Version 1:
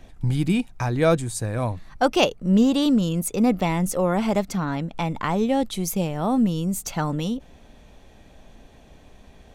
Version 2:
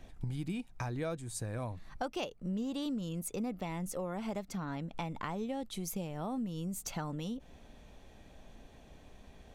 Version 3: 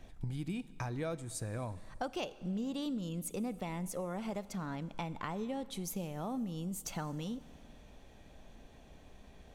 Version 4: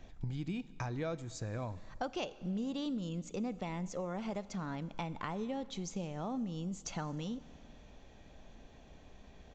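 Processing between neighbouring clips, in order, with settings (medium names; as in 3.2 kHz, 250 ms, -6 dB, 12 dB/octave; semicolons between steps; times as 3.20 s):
compression 4:1, threshold -30 dBFS, peak gain reduction 14 dB; trim -6 dB
Schroeder reverb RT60 2.1 s, combs from 30 ms, DRR 16.5 dB; trim -1 dB
resampled via 16 kHz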